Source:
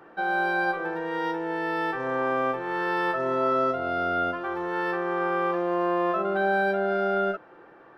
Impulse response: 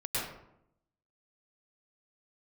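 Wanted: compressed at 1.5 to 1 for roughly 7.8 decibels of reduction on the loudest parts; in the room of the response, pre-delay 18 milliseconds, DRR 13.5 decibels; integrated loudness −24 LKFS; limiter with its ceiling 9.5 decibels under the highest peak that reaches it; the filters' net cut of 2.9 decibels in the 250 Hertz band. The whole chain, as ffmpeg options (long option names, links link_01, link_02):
-filter_complex "[0:a]equalizer=frequency=250:width_type=o:gain=-5,acompressor=threshold=-44dB:ratio=1.5,alimiter=level_in=7.5dB:limit=-24dB:level=0:latency=1,volume=-7.5dB,asplit=2[link_01][link_02];[1:a]atrim=start_sample=2205,adelay=18[link_03];[link_02][link_03]afir=irnorm=-1:irlink=0,volume=-20dB[link_04];[link_01][link_04]amix=inputs=2:normalize=0,volume=15dB"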